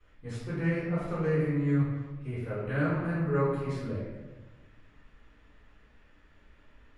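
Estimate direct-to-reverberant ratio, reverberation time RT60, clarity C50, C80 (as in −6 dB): −16.5 dB, 1.3 s, −1.0 dB, 2.0 dB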